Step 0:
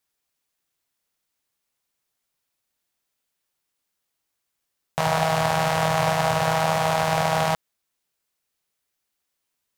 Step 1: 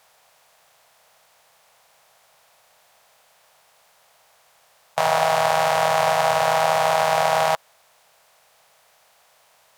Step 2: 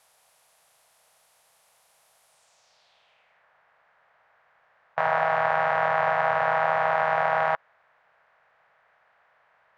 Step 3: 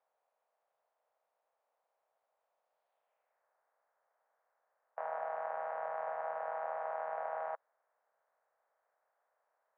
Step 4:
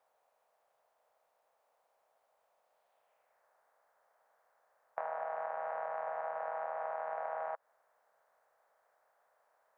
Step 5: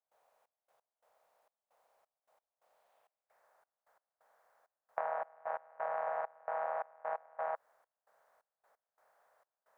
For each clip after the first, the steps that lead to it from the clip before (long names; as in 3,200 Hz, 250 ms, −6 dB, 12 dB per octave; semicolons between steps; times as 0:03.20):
compressor on every frequency bin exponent 0.6; low shelf with overshoot 410 Hz −10 dB, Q 1.5
low-pass filter sweep 11,000 Hz → 1,700 Hz, 0:02.25–0:03.45; level −6.5 dB
four-pole ladder band-pass 650 Hz, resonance 25%; level −4 dB
downward compressor 10 to 1, threshold −42 dBFS, peak gain reduction 8.5 dB; level +7.5 dB
gate pattern ".xxx..x..xxxx." 132 BPM −24 dB; level +2.5 dB